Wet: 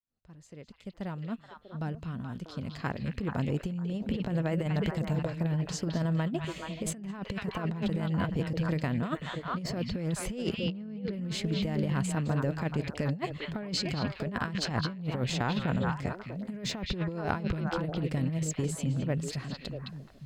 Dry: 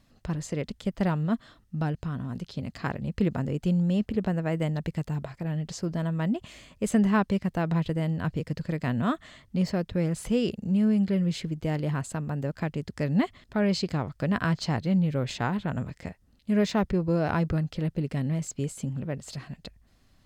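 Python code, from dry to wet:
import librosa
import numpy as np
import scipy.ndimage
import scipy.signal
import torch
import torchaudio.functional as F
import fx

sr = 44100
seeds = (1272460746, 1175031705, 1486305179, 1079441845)

y = fx.fade_in_head(x, sr, length_s=4.6)
y = fx.lowpass(y, sr, hz=5200.0, slope=24, at=(10.64, 11.13))
y = fx.echo_stepped(y, sr, ms=214, hz=3100.0, octaves=-1.4, feedback_pct=70, wet_db=-0.5)
y = fx.over_compress(y, sr, threshold_db=-28.0, ratio=-0.5)
y = y * librosa.db_to_amplitude(-1.5)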